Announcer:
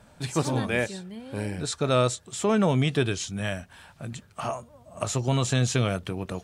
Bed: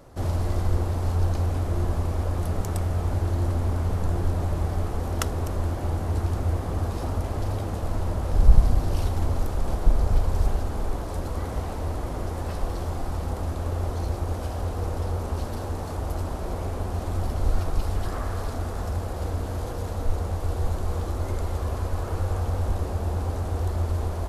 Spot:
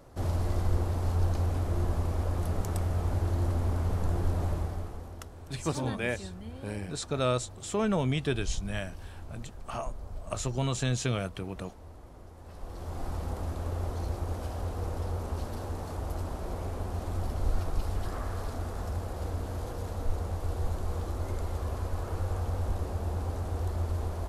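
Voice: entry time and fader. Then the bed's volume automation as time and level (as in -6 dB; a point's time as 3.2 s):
5.30 s, -5.5 dB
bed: 4.5 s -4 dB
5.32 s -19.5 dB
12.38 s -19.5 dB
13.04 s -5.5 dB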